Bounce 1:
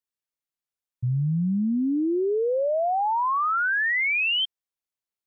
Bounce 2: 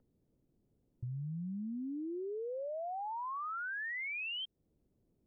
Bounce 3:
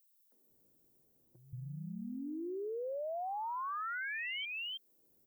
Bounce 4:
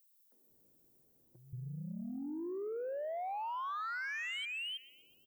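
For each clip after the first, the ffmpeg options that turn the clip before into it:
ffmpeg -i in.wav -filter_complex "[0:a]acrossover=split=390|930[link_01][link_02][link_03];[link_01]acompressor=mode=upward:threshold=-37dB:ratio=2.5[link_04];[link_04][link_02][link_03]amix=inputs=3:normalize=0,alimiter=level_in=0.5dB:limit=-24dB:level=0:latency=1:release=21,volume=-0.5dB,acompressor=threshold=-32dB:ratio=6,volume=-6.5dB" out.wav
ffmpeg -i in.wav -filter_complex "[0:a]aemphasis=mode=production:type=bsi,acrossover=split=210|2600[link_01][link_02][link_03];[link_02]adelay=320[link_04];[link_01]adelay=500[link_05];[link_05][link_04][link_03]amix=inputs=3:normalize=0,acompressor=threshold=-42dB:ratio=6,volume=5dB" out.wav
ffmpeg -i in.wav -af "aecho=1:1:123|246|369|492|615:0.1|0.058|0.0336|0.0195|0.0113,asoftclip=type=tanh:threshold=-35.5dB,volume=1.5dB" out.wav

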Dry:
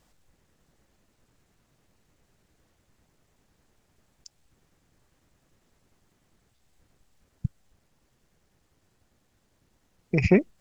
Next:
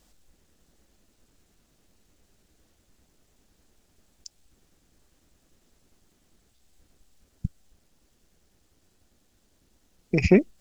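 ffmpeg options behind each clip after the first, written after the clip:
ffmpeg -i in.wav -af "equalizer=frequency=125:width_type=o:width=1:gain=-9,equalizer=frequency=500:width_type=o:width=1:gain=-3,equalizer=frequency=1000:width_type=o:width=1:gain=-6,equalizer=frequency=2000:width_type=o:width=1:gain=-5,volume=5.5dB" out.wav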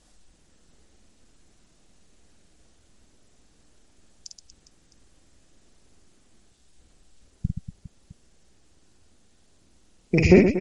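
ffmpeg -i in.wav -af "aecho=1:1:50|125|237.5|406.2|659.4:0.631|0.398|0.251|0.158|0.1,volume=2.5dB" -ar 48000 -c:a libmp3lame -b:a 48k out.mp3

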